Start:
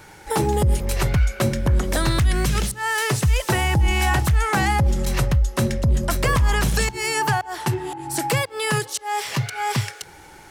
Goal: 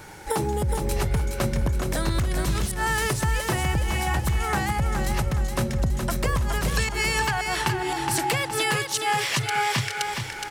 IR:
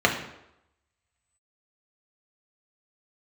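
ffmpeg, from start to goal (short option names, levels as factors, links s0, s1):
-af "asetnsamples=n=441:p=0,asendcmd='6.68 equalizer g 6',equalizer=f=2600:t=o:w=2.2:g=-2,acompressor=threshold=0.0562:ratio=6,aecho=1:1:418|836|1254|1672|2090:0.531|0.223|0.0936|0.0393|0.0165,volume=1.33"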